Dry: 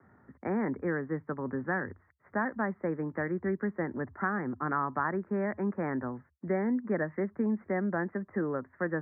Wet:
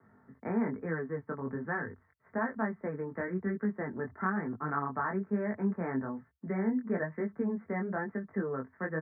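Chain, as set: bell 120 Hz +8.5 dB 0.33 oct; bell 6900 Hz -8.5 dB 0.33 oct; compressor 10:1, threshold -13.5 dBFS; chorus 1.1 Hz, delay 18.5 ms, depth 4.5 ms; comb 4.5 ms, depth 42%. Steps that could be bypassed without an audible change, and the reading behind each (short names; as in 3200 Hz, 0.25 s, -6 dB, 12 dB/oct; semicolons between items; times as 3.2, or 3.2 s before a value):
bell 6900 Hz: input band ends at 2000 Hz; compressor, threshold -13.5 dBFS: input peak -17.0 dBFS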